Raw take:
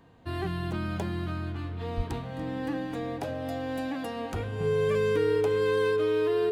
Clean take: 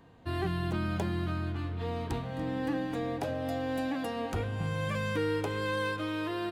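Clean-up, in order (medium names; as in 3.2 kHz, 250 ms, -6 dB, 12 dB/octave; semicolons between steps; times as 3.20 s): band-stop 430 Hz, Q 30; 1.96–2.08 s: high-pass 140 Hz 24 dB/octave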